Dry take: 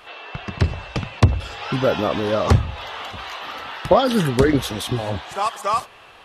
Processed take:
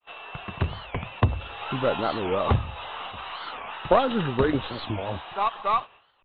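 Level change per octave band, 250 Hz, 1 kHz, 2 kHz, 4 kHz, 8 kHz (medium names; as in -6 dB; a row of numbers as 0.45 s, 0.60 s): -7.0 dB, -3.0 dB, -5.0 dB, -6.5 dB, under -40 dB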